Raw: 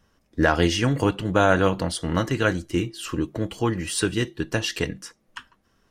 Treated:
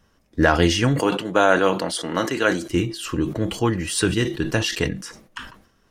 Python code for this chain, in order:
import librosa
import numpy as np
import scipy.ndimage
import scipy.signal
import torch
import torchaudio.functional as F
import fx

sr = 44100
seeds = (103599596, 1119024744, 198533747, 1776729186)

y = fx.highpass(x, sr, hz=280.0, slope=12, at=(0.99, 2.69))
y = fx.sustainer(y, sr, db_per_s=96.0)
y = F.gain(torch.from_numpy(y), 2.5).numpy()